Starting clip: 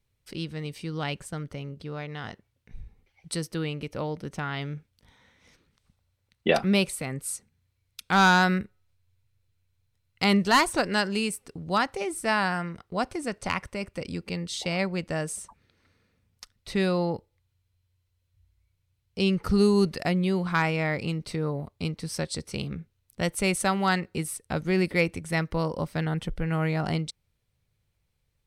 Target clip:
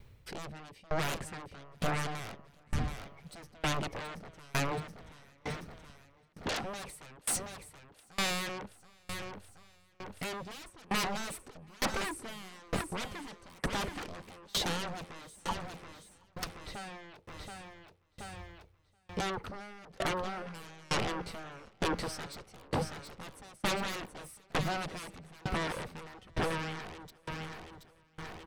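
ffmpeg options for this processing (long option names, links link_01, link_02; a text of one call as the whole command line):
ffmpeg -i in.wav -af "areverse,acompressor=threshold=-34dB:ratio=16,areverse,equalizer=frequency=10000:width_type=o:width=2.6:gain=-12.5,aeval=exprs='0.0473*sin(PI/2*7.08*val(0)/0.0473)':channel_layout=same,aecho=1:1:727|1454|2181|2908|3635|4362|5089:0.335|0.191|0.109|0.062|0.0354|0.0202|0.0115,aeval=exprs='val(0)*pow(10,-29*if(lt(mod(1.1*n/s,1),2*abs(1.1)/1000),1-mod(1.1*n/s,1)/(2*abs(1.1)/1000),(mod(1.1*n/s,1)-2*abs(1.1)/1000)/(1-2*abs(1.1)/1000))/20)':channel_layout=same,volume=1dB" out.wav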